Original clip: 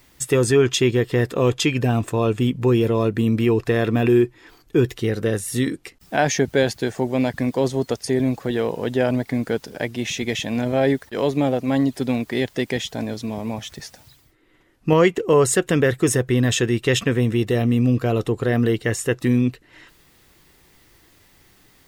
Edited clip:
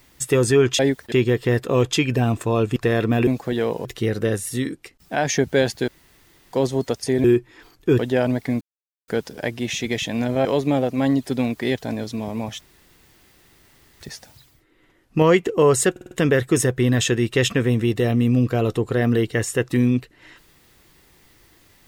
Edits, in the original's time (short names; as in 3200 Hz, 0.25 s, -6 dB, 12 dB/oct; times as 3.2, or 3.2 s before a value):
2.43–3.6 cut
4.11–4.86 swap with 8.25–8.83
5.5–6.3 gain -3 dB
6.89–7.54 room tone
9.45 insert silence 0.47 s
10.82–11.15 move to 0.79
12.48–12.88 cut
13.71 insert room tone 1.39 s
15.62 stutter 0.05 s, 5 plays